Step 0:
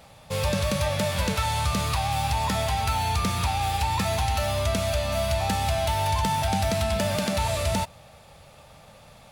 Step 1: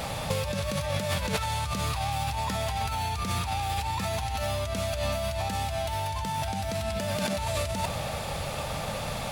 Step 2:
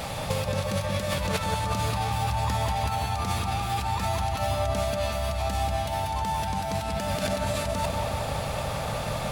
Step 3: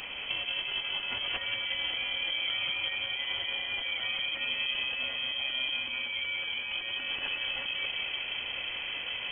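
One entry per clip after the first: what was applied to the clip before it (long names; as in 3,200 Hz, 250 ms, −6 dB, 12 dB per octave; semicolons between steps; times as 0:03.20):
compressor whose output falls as the input rises −36 dBFS, ratio −1; level +6.5 dB
bucket-brigade delay 180 ms, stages 2,048, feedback 71%, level −3.5 dB
voice inversion scrambler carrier 3,200 Hz; level −6.5 dB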